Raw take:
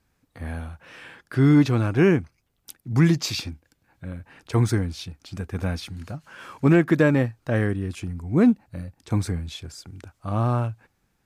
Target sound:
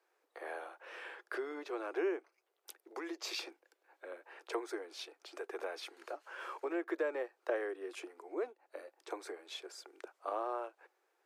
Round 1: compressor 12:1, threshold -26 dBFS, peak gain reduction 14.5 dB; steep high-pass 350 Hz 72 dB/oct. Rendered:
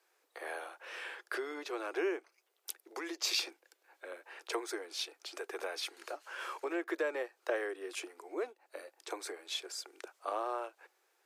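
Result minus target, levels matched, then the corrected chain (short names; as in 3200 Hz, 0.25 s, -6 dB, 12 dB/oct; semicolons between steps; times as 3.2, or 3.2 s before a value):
4000 Hz band +5.5 dB
compressor 12:1, threshold -26 dBFS, peak gain reduction 14.5 dB; steep high-pass 350 Hz 72 dB/oct; high shelf 2300 Hz -11 dB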